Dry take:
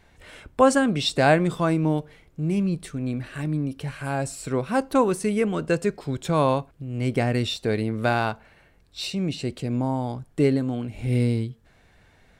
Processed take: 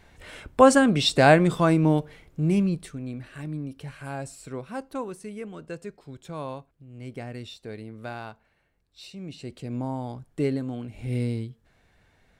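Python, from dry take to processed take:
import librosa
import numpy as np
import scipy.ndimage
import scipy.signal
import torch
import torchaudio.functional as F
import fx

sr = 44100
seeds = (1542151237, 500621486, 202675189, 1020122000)

y = fx.gain(x, sr, db=fx.line((2.55, 2.0), (3.06, -7.0), (4.1, -7.0), (5.2, -14.0), (9.08, -14.0), (9.78, -5.5)))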